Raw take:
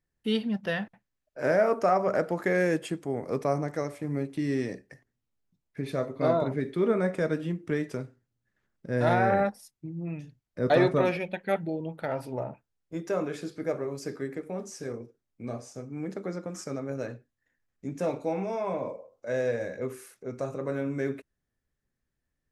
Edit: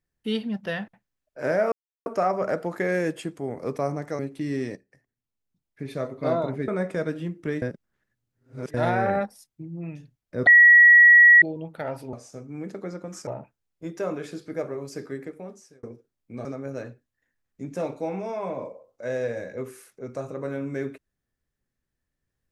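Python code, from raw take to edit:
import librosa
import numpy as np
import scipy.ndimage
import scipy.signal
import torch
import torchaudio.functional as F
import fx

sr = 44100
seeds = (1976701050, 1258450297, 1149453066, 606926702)

y = fx.edit(x, sr, fx.insert_silence(at_s=1.72, length_s=0.34),
    fx.cut(start_s=3.85, length_s=0.32),
    fx.fade_in_from(start_s=4.74, length_s=1.31, floor_db=-13.5),
    fx.cut(start_s=6.66, length_s=0.26),
    fx.reverse_span(start_s=7.86, length_s=1.12),
    fx.bleep(start_s=10.71, length_s=0.95, hz=1920.0, db=-9.0),
    fx.fade_out_span(start_s=14.31, length_s=0.62),
    fx.move(start_s=15.55, length_s=1.14, to_s=12.37), tone=tone)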